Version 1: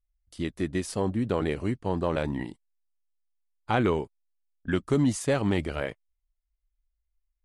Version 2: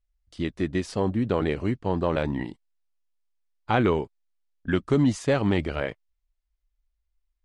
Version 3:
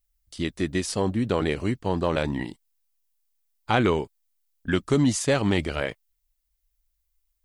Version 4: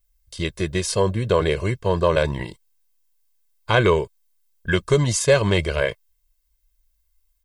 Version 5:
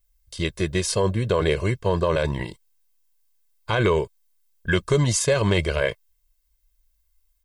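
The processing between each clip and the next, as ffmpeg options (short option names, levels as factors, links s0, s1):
-af "lowpass=5600,volume=1.33"
-af "aemphasis=mode=production:type=75kf"
-af "aecho=1:1:1.9:0.83,volume=1.41"
-af "alimiter=limit=0.316:level=0:latency=1:release=34"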